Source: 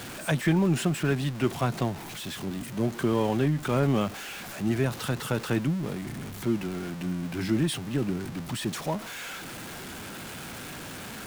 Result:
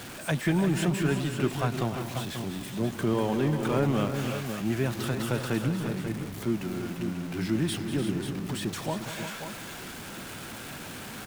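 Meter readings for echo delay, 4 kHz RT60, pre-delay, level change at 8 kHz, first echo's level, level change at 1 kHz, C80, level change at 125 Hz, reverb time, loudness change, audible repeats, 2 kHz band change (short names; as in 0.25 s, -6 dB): 0.195 s, none, none, -0.5 dB, -12.0 dB, -0.5 dB, none, -1.0 dB, none, -0.5 dB, 4, -0.5 dB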